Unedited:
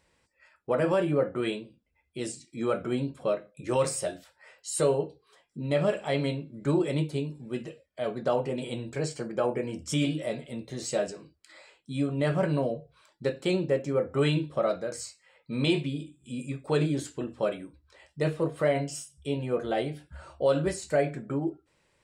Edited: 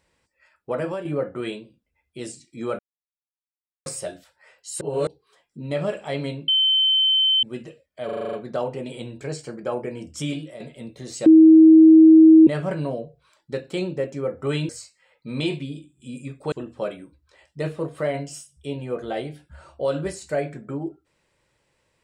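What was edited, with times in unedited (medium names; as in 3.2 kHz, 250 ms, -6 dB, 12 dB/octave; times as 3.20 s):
0.77–1.05 s: fade out, to -9 dB
2.79–3.86 s: mute
4.81–5.07 s: reverse
6.48–7.43 s: bleep 3.08 kHz -15.5 dBFS
8.05 s: stutter 0.04 s, 8 plays
9.81–10.32 s: fade out equal-power, to -10.5 dB
10.98–12.19 s: bleep 319 Hz -6.5 dBFS
14.41–14.93 s: delete
16.76–17.13 s: delete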